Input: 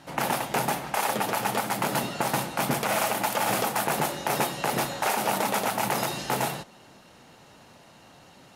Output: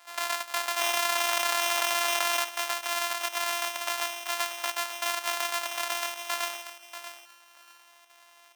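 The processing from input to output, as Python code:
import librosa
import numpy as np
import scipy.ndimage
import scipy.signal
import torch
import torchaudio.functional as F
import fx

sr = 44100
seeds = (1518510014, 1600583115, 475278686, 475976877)

y = np.r_[np.sort(x[:len(x) // 128 * 128].reshape(-1, 128), axis=1).ravel(), x[len(x) // 128 * 128:]]
y = scipy.signal.sosfilt(scipy.signal.butter(4, 760.0, 'highpass', fs=sr, output='sos'), y)
y = fx.chopper(y, sr, hz=2.1, depth_pct=60, duty_pct=90)
y = fx.echo_feedback(y, sr, ms=636, feedback_pct=19, wet_db=-10.5)
y = fx.env_flatten(y, sr, amount_pct=100, at=(0.76, 2.43), fade=0.02)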